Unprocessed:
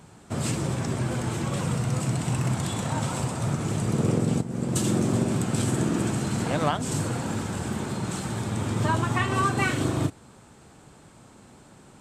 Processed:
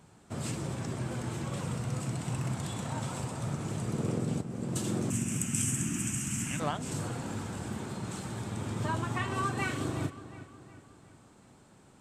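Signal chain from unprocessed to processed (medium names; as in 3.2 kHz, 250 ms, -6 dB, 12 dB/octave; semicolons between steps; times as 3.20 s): 5.10–6.60 s: FFT filter 270 Hz 0 dB, 480 Hz -21 dB, 2.8 kHz +9 dB, 4.1 kHz -12 dB, 6 kHz +12 dB; filtered feedback delay 364 ms, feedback 49%, low-pass 4 kHz, level -14 dB; trim -8 dB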